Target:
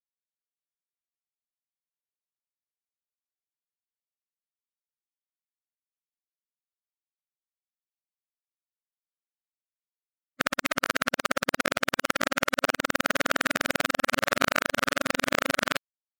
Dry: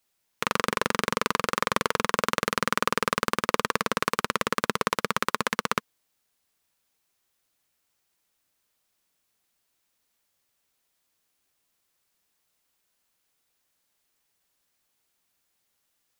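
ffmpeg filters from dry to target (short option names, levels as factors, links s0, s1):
-af "areverse,afftfilt=real='re*gte(hypot(re,im),0.00562)':imag='im*gte(hypot(re,im),0.00562)':win_size=1024:overlap=0.75,asetrate=53981,aresample=44100,atempo=0.816958"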